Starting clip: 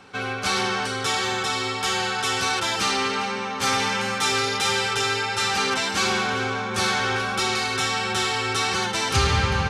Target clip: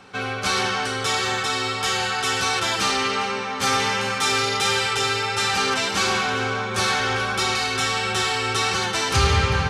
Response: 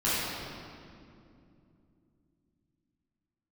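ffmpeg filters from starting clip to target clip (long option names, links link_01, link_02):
-filter_complex "[0:a]acontrast=21,asplit=2[link_01][link_02];[1:a]atrim=start_sample=2205,atrim=end_sample=6174,asetrate=27783,aresample=44100[link_03];[link_02][link_03]afir=irnorm=-1:irlink=0,volume=-21.5dB[link_04];[link_01][link_04]amix=inputs=2:normalize=0,volume=-4.5dB"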